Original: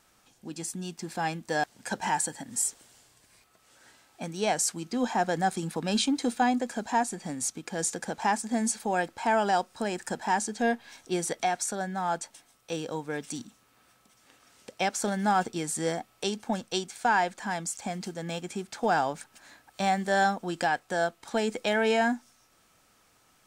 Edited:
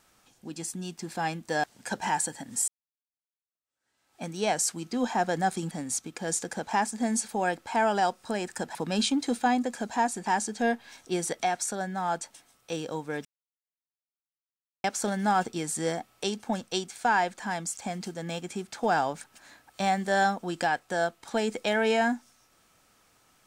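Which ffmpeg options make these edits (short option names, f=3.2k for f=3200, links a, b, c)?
-filter_complex "[0:a]asplit=7[a][b][c][d][e][f][g];[a]atrim=end=2.68,asetpts=PTS-STARTPTS,afade=t=out:st=2.676:d=0.004:c=hsin[h];[b]atrim=start=2.68:end=5.712,asetpts=PTS-STARTPTS,afade=t=in:d=1.55:c=exp[i];[c]atrim=start=7.218:end=10.262[j];[d]atrim=start=5.708:end=7.222[k];[e]atrim=start=10.258:end=13.25,asetpts=PTS-STARTPTS,afade=t=out:st=2.988:d=0.004:c=hsin[l];[f]atrim=start=13.25:end=14.84,asetpts=PTS-STARTPTS,volume=0[m];[g]atrim=start=14.84,asetpts=PTS-STARTPTS,afade=t=in:d=0.004:c=hsin[n];[h][i]concat=n=2:v=0:a=1[o];[o][j]acrossfade=d=0.004:c1=hsin:c2=hsin[p];[p][k]acrossfade=d=0.004:c1=hsin:c2=hsin[q];[l][m][n]concat=n=3:v=0:a=1[r];[q][r]acrossfade=d=0.004:c1=hsin:c2=hsin"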